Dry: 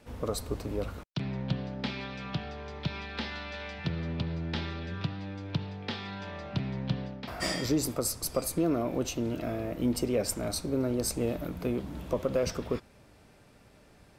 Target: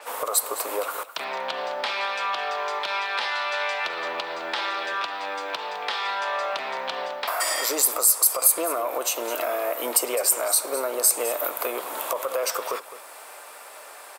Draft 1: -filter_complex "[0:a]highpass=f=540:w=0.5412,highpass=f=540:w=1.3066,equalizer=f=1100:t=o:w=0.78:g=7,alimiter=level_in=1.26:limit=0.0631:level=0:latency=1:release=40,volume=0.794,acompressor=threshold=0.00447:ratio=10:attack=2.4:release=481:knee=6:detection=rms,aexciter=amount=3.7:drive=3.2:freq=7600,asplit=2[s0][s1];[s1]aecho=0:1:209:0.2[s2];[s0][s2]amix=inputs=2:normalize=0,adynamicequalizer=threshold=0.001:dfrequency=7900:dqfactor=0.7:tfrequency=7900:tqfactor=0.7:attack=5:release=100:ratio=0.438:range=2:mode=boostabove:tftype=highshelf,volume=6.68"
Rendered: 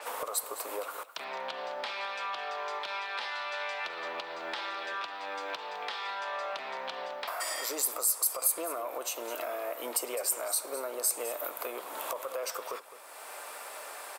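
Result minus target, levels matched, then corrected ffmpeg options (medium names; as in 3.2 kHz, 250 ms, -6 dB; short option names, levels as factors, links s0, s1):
compression: peak gain reduction +9.5 dB
-filter_complex "[0:a]highpass=f=540:w=0.5412,highpass=f=540:w=1.3066,equalizer=f=1100:t=o:w=0.78:g=7,alimiter=level_in=1.26:limit=0.0631:level=0:latency=1:release=40,volume=0.794,acompressor=threshold=0.015:ratio=10:attack=2.4:release=481:knee=6:detection=rms,aexciter=amount=3.7:drive=3.2:freq=7600,asplit=2[s0][s1];[s1]aecho=0:1:209:0.2[s2];[s0][s2]amix=inputs=2:normalize=0,adynamicequalizer=threshold=0.001:dfrequency=7900:dqfactor=0.7:tfrequency=7900:tqfactor=0.7:attack=5:release=100:ratio=0.438:range=2:mode=boostabove:tftype=highshelf,volume=6.68"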